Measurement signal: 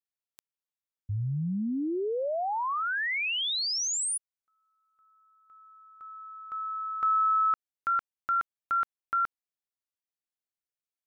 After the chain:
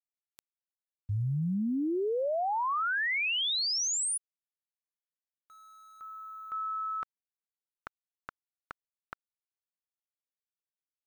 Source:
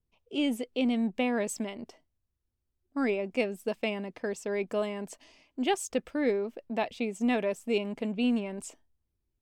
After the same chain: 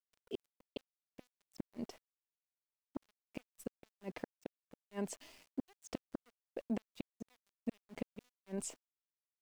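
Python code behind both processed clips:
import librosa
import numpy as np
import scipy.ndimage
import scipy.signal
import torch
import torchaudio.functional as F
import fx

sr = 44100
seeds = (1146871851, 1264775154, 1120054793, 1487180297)

y = fx.high_shelf(x, sr, hz=11000.0, db=-3.0)
y = fx.gate_flip(y, sr, shuts_db=-26.0, range_db=-38)
y = np.where(np.abs(y) >= 10.0 ** (-58.0 / 20.0), y, 0.0)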